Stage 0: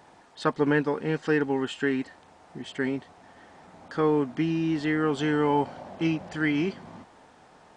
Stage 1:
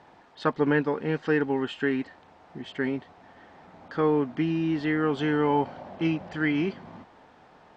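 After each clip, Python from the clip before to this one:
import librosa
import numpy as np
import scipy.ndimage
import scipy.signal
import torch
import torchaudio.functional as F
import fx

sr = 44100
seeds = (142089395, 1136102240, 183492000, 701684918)

y = scipy.signal.sosfilt(scipy.signal.butter(2, 4100.0, 'lowpass', fs=sr, output='sos'), x)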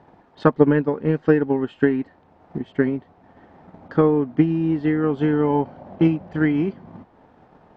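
y = fx.low_shelf(x, sr, hz=470.0, db=7.0)
y = fx.transient(y, sr, attack_db=8, sustain_db=-3)
y = fx.high_shelf(y, sr, hz=2200.0, db=-10.0)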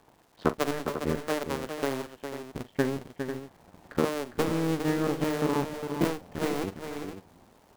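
y = fx.cycle_switch(x, sr, every=2, mode='muted')
y = fx.dmg_crackle(y, sr, seeds[0], per_s=350.0, level_db=-46.0)
y = fx.echo_multitap(y, sr, ms=(43, 407, 496), db=(-14.5, -8.0, -11.0))
y = F.gain(torch.from_numpy(y), -6.5).numpy()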